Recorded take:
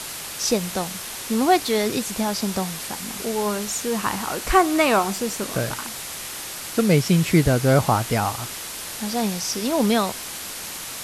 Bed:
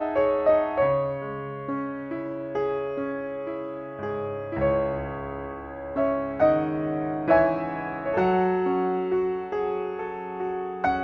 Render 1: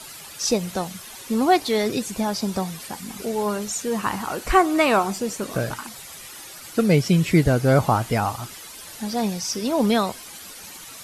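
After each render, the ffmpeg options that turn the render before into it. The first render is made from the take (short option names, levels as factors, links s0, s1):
-af "afftdn=nr=11:nf=-34"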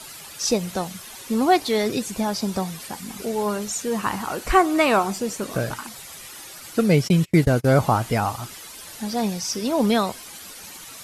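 -filter_complex "[0:a]asplit=3[s0][s1][s2];[s0]afade=t=out:st=7.07:d=0.02[s3];[s1]agate=range=0.0224:threshold=0.0631:ratio=16:release=100:detection=peak,afade=t=in:st=7.07:d=0.02,afade=t=out:st=7.78:d=0.02[s4];[s2]afade=t=in:st=7.78:d=0.02[s5];[s3][s4][s5]amix=inputs=3:normalize=0"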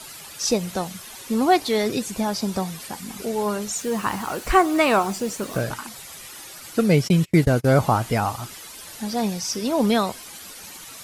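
-filter_complex "[0:a]asettb=1/sr,asplit=3[s0][s1][s2];[s0]atrim=end=3.764[s3];[s1]atrim=start=3.76:end=5.61,asetpts=PTS-STARTPTS,afade=t=in:d=0.004:c=qsin,afade=t=out:st=1.846:d=0.004:c=qsin,acrusher=bits=6:mix=0:aa=0.5[s4];[s2]atrim=start=5.606[s5];[s3][s4]acrossfade=d=0.004:c1=hsin:c2=qsin[s6];[s6][s5]acrossfade=d=0.004:c1=qsin:c2=hsin"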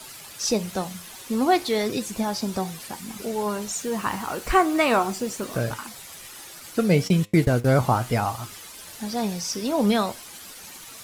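-filter_complex "[0:a]flanger=delay=7.9:depth=3.9:regen=80:speed=0.38:shape=sinusoidal,asplit=2[s0][s1];[s1]acrusher=bits=6:mix=0:aa=0.000001,volume=0.355[s2];[s0][s2]amix=inputs=2:normalize=0"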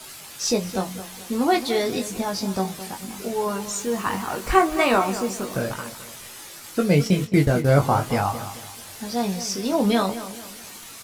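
-filter_complex "[0:a]asplit=2[s0][s1];[s1]adelay=21,volume=0.562[s2];[s0][s2]amix=inputs=2:normalize=0,asplit=2[s3][s4];[s4]adelay=217,lowpass=f=3300:p=1,volume=0.224,asplit=2[s5][s6];[s6]adelay=217,lowpass=f=3300:p=1,volume=0.39,asplit=2[s7][s8];[s8]adelay=217,lowpass=f=3300:p=1,volume=0.39,asplit=2[s9][s10];[s10]adelay=217,lowpass=f=3300:p=1,volume=0.39[s11];[s3][s5][s7][s9][s11]amix=inputs=5:normalize=0"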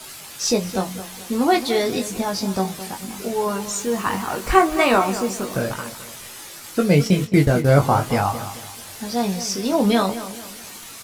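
-af "volume=1.33"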